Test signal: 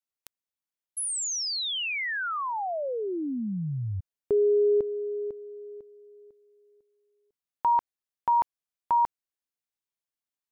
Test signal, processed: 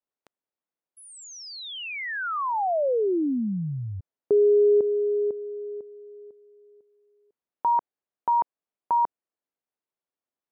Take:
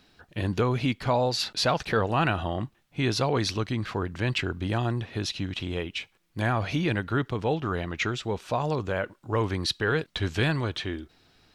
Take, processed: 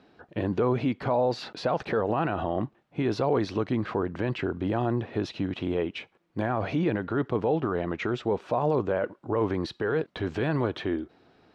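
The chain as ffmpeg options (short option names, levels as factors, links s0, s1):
-af "alimiter=limit=0.0794:level=0:latency=1:release=38,bandpass=f=460:t=q:w=0.66:csg=0,volume=2.37"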